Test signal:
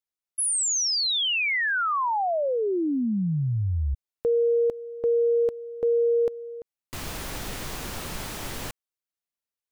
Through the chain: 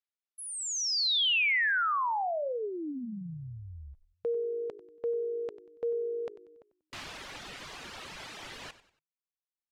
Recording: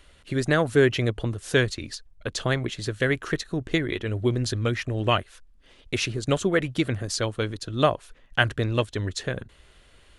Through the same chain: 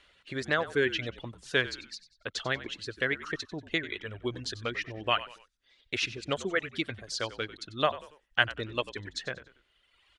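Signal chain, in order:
reverb reduction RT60 1.4 s
low-pass filter 3,500 Hz 12 dB per octave
spectral tilt +3 dB per octave
echo with shifted repeats 94 ms, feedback 36%, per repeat −53 Hz, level −15.5 dB
level −4.5 dB

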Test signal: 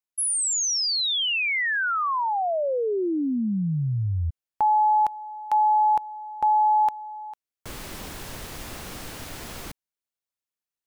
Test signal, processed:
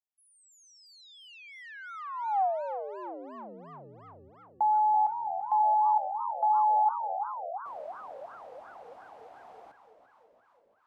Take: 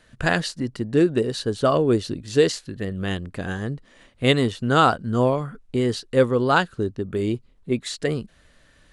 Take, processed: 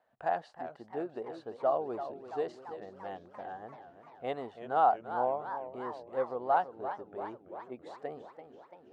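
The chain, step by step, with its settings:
resonant band-pass 760 Hz, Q 6.1
feedback echo with a swinging delay time 337 ms, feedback 65%, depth 189 cents, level −11 dB

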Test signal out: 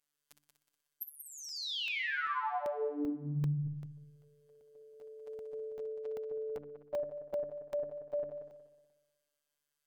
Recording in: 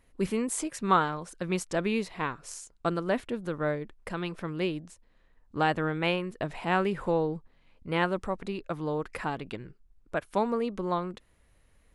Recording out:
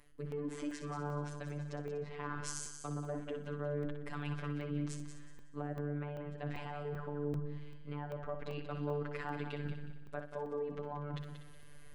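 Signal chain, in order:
treble cut that deepens with the level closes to 780 Hz, closed at −24 dBFS
mains-hum notches 60/120/180/240/300 Hz
reversed playback
downward compressor 6 to 1, threshold −42 dBFS
reversed playback
brickwall limiter −38 dBFS
phases set to zero 146 Hz
on a send: echo machine with several playback heads 61 ms, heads first and third, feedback 49%, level −9 dB
on the sum: regular buffer underruns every 0.39 s, samples 64, zero, from 0:00.32
level +9 dB

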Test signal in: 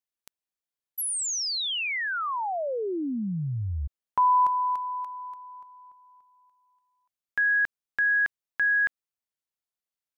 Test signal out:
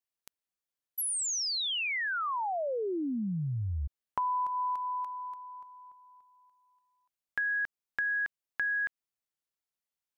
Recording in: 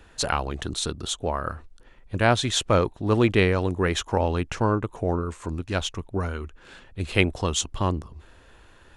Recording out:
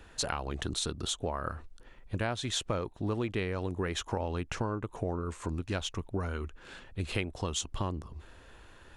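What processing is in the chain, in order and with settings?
downward compressor 6 to 1, threshold −28 dBFS
level −1.5 dB

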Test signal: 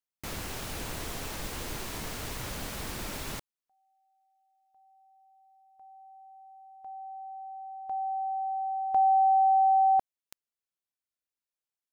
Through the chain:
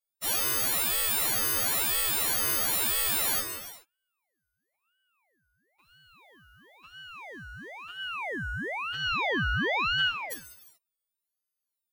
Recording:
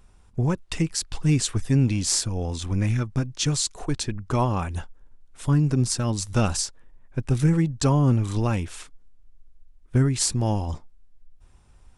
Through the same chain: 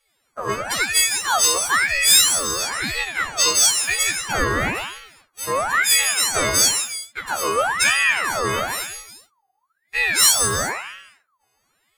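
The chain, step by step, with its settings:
every partial snapped to a pitch grid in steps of 4 semitones
hum removal 86.22 Hz, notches 35
leveller curve on the samples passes 2
low shelf with overshoot 230 Hz −10 dB, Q 3
reverb whose tail is shaped and stops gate 450 ms falling, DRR 0 dB
ring modulator whose carrier an LFO sweeps 1,500 Hz, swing 50%, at 1 Hz
level −5.5 dB

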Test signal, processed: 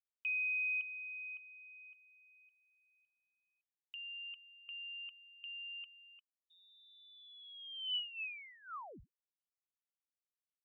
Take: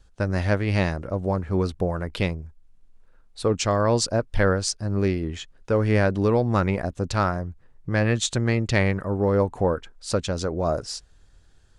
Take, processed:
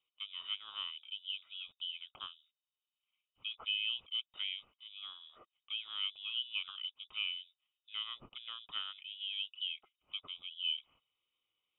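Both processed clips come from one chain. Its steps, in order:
formant filter a
voice inversion scrambler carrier 3,700 Hz
level −5.5 dB

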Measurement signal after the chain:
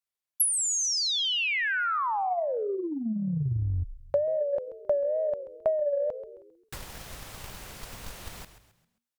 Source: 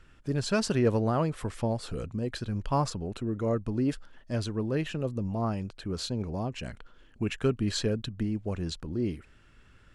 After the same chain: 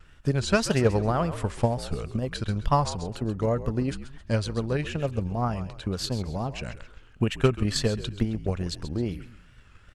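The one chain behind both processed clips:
parametric band 300 Hz −6 dB 0.99 octaves
tape wow and flutter 100 cents
echo with shifted repeats 133 ms, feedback 39%, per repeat −60 Hz, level −12 dB
transient designer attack +8 dB, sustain +1 dB
level +2.5 dB

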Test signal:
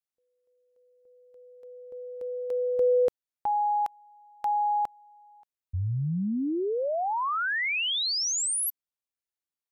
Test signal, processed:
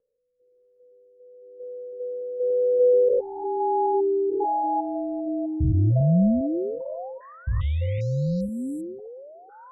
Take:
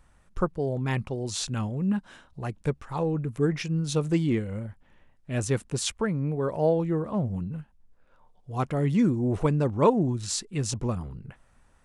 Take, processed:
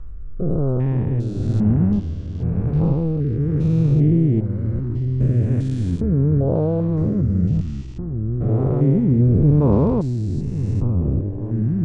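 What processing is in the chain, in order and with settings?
spectrum averaged block by block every 400 ms
high-shelf EQ 2,600 Hz −8.5 dB
delay with pitch and tempo change per echo 413 ms, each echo −4 semitones, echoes 2, each echo −6 dB
spectral tilt −3 dB per octave
rotating-speaker cabinet horn 1 Hz
level +5.5 dB

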